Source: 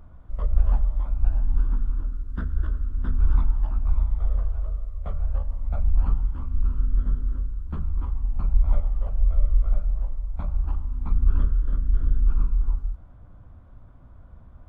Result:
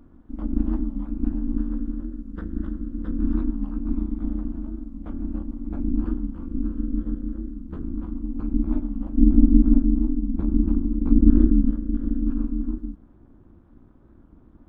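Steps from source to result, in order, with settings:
0:09.17–0:11.71: low-shelf EQ 170 Hz +9 dB
amplitude modulation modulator 260 Hz, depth 100%
wow of a warped record 45 rpm, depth 100 cents
level −1 dB

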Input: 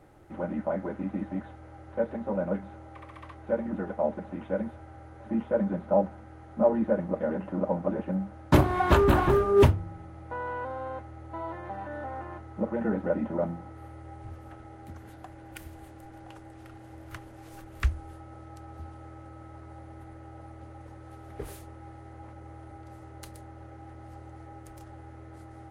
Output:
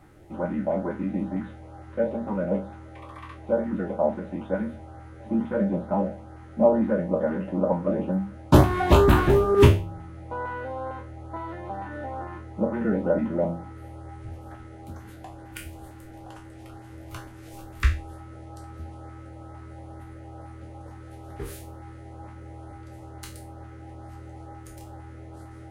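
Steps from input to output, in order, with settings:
peak hold with a decay on every bin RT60 0.36 s
auto-filter notch saw up 2.2 Hz 440–3,000 Hz
level +3.5 dB

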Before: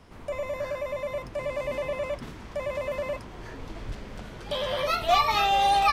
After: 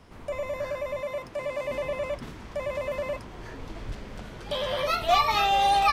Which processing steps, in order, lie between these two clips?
0:01.02–0:01.71: low-shelf EQ 120 Hz −11 dB

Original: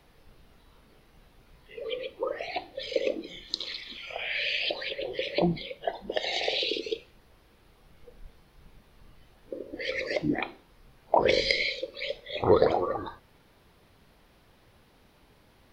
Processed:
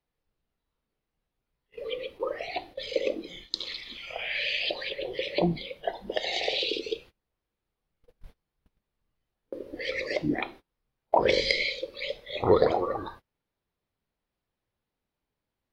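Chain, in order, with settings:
noise gate −46 dBFS, range −26 dB

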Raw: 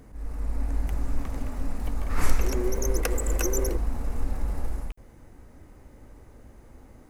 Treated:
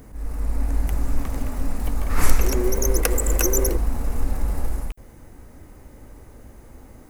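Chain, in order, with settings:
high-shelf EQ 10,000 Hz +10 dB
level +5 dB

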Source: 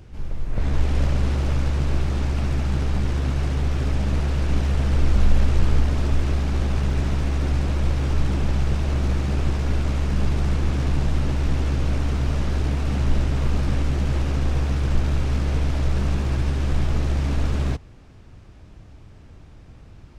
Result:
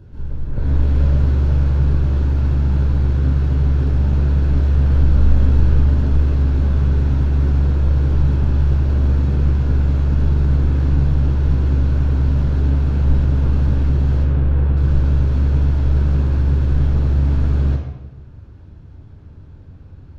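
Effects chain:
0:14.23–0:14.77: Bessel low-pass filter 2,700 Hz, order 4
convolution reverb RT60 1.1 s, pre-delay 3 ms, DRR 0.5 dB
level −10 dB

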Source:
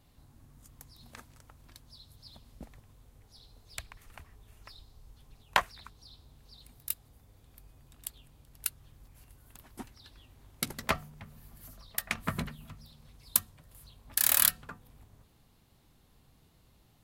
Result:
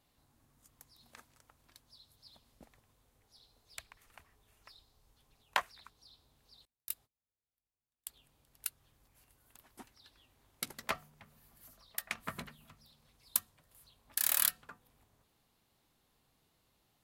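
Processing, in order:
0:06.65–0:08.13: noise gate −48 dBFS, range −30 dB
low-shelf EQ 220 Hz −12 dB
level −5.5 dB

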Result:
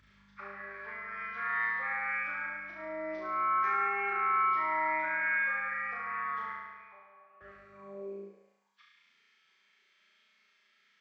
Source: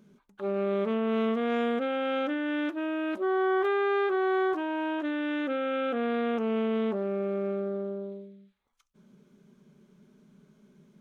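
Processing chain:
hearing-aid frequency compression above 1,000 Hz 1.5 to 1
reverb reduction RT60 1.9 s
0:02.46–0:03.20: octave-band graphic EQ 250/500/1,000/2,000 Hz +5/+12/−4/−10 dB
brickwall limiter −28.5 dBFS, peak gain reduction 8 dB
high-pass filter sweep 1,700 Hz → 72 Hz, 0:07.70–0:08.55
mains hum 50 Hz, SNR 25 dB
0:06.52–0:07.41: formant filter a
on a send: flutter between parallel walls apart 6 metres, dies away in 1.4 s
on the sum: high-pass filter sweep 72 Hz → 2,100 Hz, 0:07.60–0:09.02
level +4 dB

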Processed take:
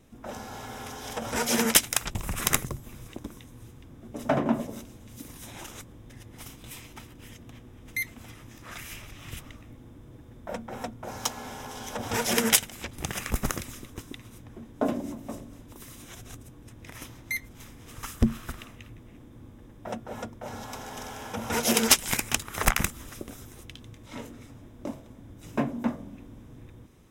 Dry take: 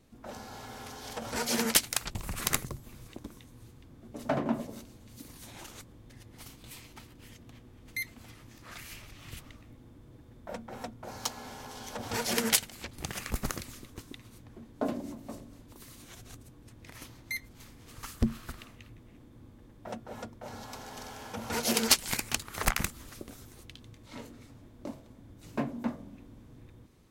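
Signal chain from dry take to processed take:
notch filter 4,400 Hz, Q 5
level +5 dB

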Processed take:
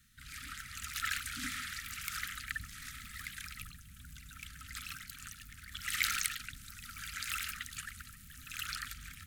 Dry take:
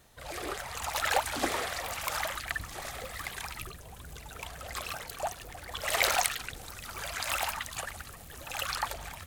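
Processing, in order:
Chebyshev band-stop filter 270–1,300 Hz, order 5
level −4.5 dB

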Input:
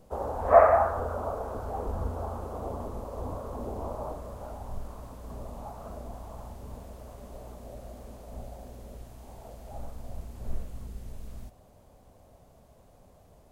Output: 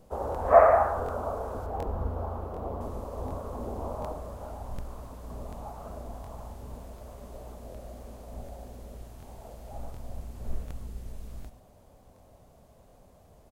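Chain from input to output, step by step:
0:01.66–0:02.81: parametric band 8,100 Hz −12 dB 1.8 octaves
single-tap delay 105 ms −12 dB
regular buffer underruns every 0.74 s, samples 1,024, repeat, from 0:00.30

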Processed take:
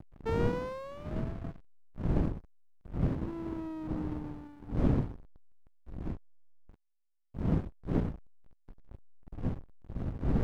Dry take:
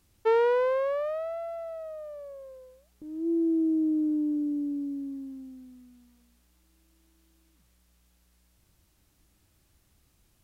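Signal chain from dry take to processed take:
one-sided soft clipper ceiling −21.5 dBFS
wind on the microphone 250 Hz −27 dBFS
slack as between gear wheels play −22.5 dBFS
level −7 dB

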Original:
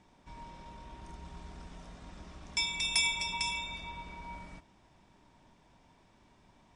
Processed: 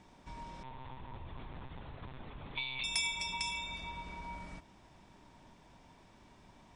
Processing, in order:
downward compressor 1.5 to 1, threshold −50 dBFS, peak gain reduction 9 dB
0:00.63–0:02.84: one-pitch LPC vocoder at 8 kHz 130 Hz
level +3.5 dB

